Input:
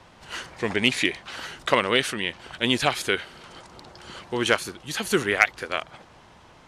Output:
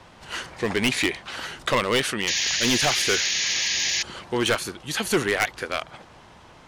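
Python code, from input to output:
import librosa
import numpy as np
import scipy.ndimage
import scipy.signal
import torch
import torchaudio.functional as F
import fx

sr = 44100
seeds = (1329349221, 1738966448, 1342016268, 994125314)

y = fx.spec_paint(x, sr, seeds[0], shape='noise', start_s=2.27, length_s=1.76, low_hz=1600.0, high_hz=7000.0, level_db=-27.0)
y = np.clip(y, -10.0 ** (-18.0 / 20.0), 10.0 ** (-18.0 / 20.0))
y = y * 10.0 ** (2.5 / 20.0)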